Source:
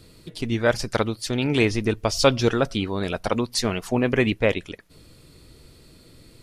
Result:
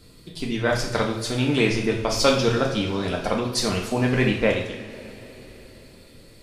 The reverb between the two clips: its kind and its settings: two-slope reverb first 0.57 s, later 4.5 s, from -19 dB, DRR -0.5 dB; gain -2.5 dB

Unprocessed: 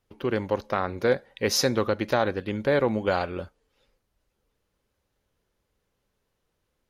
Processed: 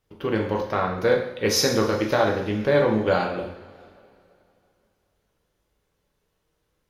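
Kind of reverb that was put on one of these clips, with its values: two-slope reverb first 0.62 s, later 2.8 s, from -19 dB, DRR 0 dB

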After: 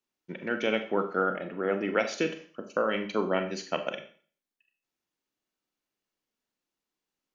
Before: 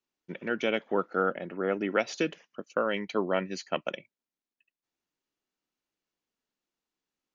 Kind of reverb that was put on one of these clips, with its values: Schroeder reverb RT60 0.44 s, combs from 29 ms, DRR 6.5 dB

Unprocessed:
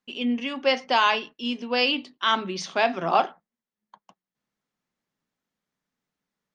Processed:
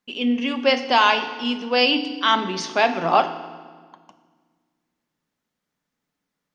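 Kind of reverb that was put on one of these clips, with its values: FDN reverb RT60 1.6 s, low-frequency decay 1.45×, high-frequency decay 0.85×, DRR 9 dB; gain +3.5 dB

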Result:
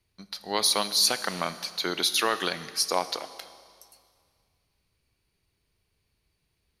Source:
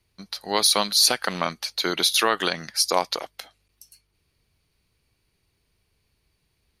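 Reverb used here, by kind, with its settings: Schroeder reverb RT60 2.1 s, combs from 26 ms, DRR 13 dB; gain -4.5 dB

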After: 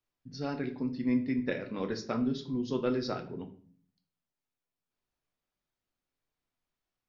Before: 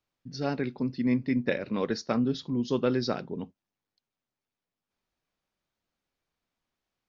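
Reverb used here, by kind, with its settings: shoebox room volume 48 m³, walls mixed, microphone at 0.36 m; gain -6 dB

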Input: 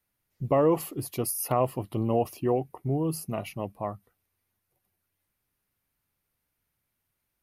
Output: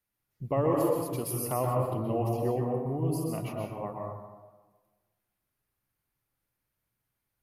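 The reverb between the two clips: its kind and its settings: plate-style reverb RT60 1.3 s, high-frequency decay 0.35×, pre-delay 0.11 s, DRR -1 dB; gain -6 dB

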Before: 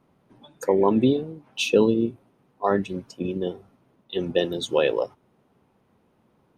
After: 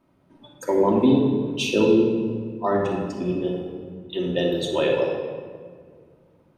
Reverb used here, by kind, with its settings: shoebox room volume 2700 m³, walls mixed, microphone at 2.7 m; gain -3 dB

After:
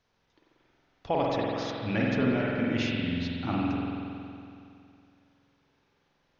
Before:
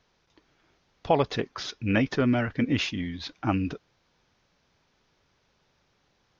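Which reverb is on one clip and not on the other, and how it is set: spring tank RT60 2.6 s, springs 46 ms, chirp 45 ms, DRR -4 dB; gain -7 dB

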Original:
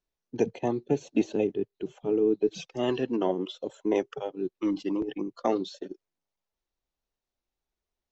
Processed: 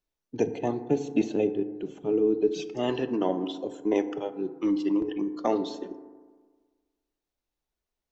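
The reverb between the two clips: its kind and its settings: FDN reverb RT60 1.5 s, low-frequency decay 1×, high-frequency decay 0.3×, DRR 9.5 dB

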